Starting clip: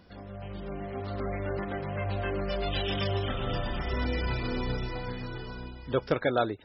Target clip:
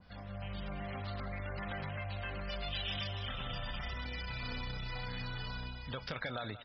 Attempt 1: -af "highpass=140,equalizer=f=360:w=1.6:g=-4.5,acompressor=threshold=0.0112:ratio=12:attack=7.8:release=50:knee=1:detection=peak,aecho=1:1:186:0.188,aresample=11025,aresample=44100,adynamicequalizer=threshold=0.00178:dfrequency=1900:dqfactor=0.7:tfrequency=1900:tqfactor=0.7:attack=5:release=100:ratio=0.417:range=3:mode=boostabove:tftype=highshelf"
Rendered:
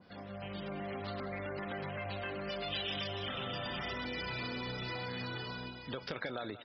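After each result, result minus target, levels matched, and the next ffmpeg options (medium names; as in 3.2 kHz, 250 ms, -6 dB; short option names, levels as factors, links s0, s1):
125 Hz band -4.5 dB; 500 Hz band +4.0 dB
-af "equalizer=f=360:w=1.6:g=-4.5,acompressor=threshold=0.0112:ratio=12:attack=7.8:release=50:knee=1:detection=peak,aecho=1:1:186:0.188,aresample=11025,aresample=44100,adynamicequalizer=threshold=0.00178:dfrequency=1900:dqfactor=0.7:tfrequency=1900:tqfactor=0.7:attack=5:release=100:ratio=0.417:range=3:mode=boostabove:tftype=highshelf"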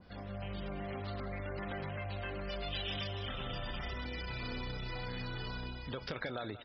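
500 Hz band +3.0 dB
-af "equalizer=f=360:w=1.6:g=-15.5,acompressor=threshold=0.0112:ratio=12:attack=7.8:release=50:knee=1:detection=peak,aecho=1:1:186:0.188,aresample=11025,aresample=44100,adynamicequalizer=threshold=0.00178:dfrequency=1900:dqfactor=0.7:tfrequency=1900:tqfactor=0.7:attack=5:release=100:ratio=0.417:range=3:mode=boostabove:tftype=highshelf"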